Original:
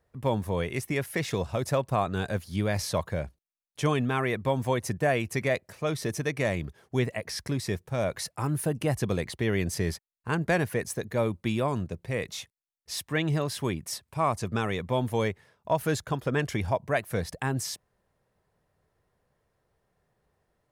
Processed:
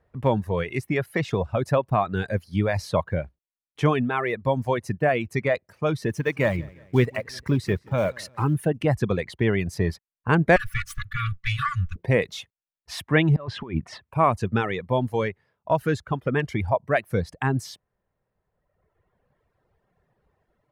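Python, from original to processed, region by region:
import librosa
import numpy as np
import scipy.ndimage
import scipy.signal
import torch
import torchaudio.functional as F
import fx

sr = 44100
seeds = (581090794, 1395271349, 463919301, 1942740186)

y = fx.chain(x, sr, fx.block_float(bits=5),
    fx.notch(hz=710.0, q=7.4),
    fx.echo_feedback(ms=177, feedback_pct=47, wet_db=-14.5), at=(6.1, 8.55))
y = fx.chain(y, sr, fx.lower_of_two(delay_ms=3.5),
    fx.brickwall_bandstop(low_hz=170.0, high_hz=1100.0), at=(10.56, 11.96))
y = fx.chain(y, sr, fx.lowpass(hz=3300.0, slope=12),
    fx.over_compress(threshold_db=-33.0, ratio=-0.5), at=(13.36, 14.06))
y = fx.dereverb_blind(y, sr, rt60_s=1.6)
y = fx.bass_treble(y, sr, bass_db=1, treble_db=-14)
y = fx.rider(y, sr, range_db=10, speed_s=2.0)
y = F.gain(torch.from_numpy(y), 5.5).numpy()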